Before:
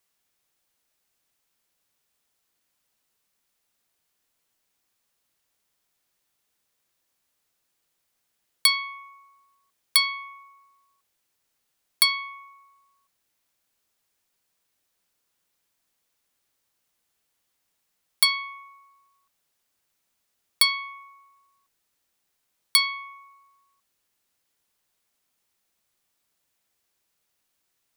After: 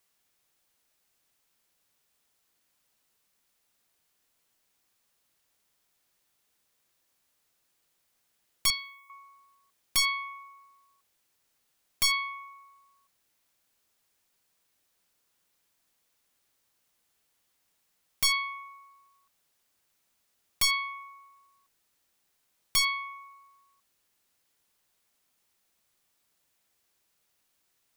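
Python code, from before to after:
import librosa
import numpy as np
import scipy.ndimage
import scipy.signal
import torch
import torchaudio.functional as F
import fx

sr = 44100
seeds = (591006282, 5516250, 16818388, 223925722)

y = fx.differentiator(x, sr, at=(8.7, 9.1))
y = 10.0 ** (-19.5 / 20.0) * (np.abs((y / 10.0 ** (-19.5 / 20.0) + 3.0) % 4.0 - 2.0) - 1.0)
y = y * librosa.db_to_amplitude(1.5)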